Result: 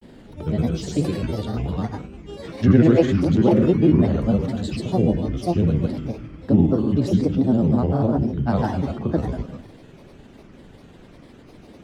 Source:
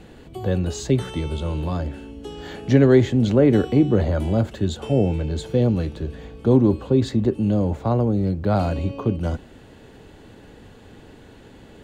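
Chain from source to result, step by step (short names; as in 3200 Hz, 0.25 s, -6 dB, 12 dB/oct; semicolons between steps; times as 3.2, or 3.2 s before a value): bell 200 Hz +7 dB 0.89 oct; digital reverb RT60 0.69 s, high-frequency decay 0.95×, pre-delay 45 ms, DRR 3 dB; grains, grains 20/s, pitch spread up and down by 7 st; gain -2.5 dB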